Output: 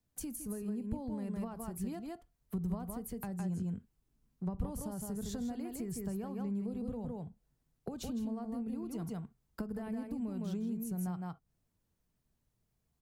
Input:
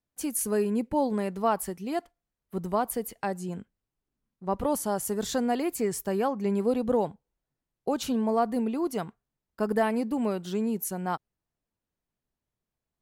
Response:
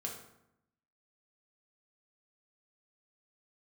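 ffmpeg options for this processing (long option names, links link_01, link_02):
-filter_complex "[0:a]bass=frequency=250:gain=8,treble=frequency=4000:gain=5,aecho=1:1:160:0.531,acompressor=threshold=-28dB:ratio=6,asplit=2[link_01][link_02];[1:a]atrim=start_sample=2205,atrim=end_sample=3087,lowpass=3100[link_03];[link_02][link_03]afir=irnorm=-1:irlink=0,volume=-11.5dB[link_04];[link_01][link_04]amix=inputs=2:normalize=0,acrossover=split=170[link_05][link_06];[link_06]acompressor=threshold=-42dB:ratio=10[link_07];[link_05][link_07]amix=inputs=2:normalize=0"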